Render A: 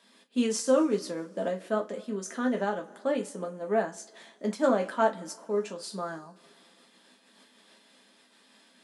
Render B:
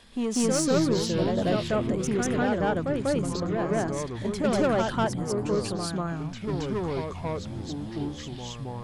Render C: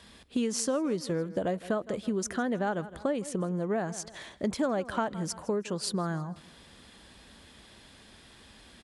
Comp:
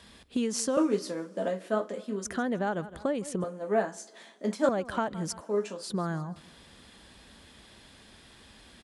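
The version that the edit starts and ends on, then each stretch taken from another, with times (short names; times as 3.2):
C
0.77–2.25 from A
3.44–4.69 from A
5.41–5.9 from A
not used: B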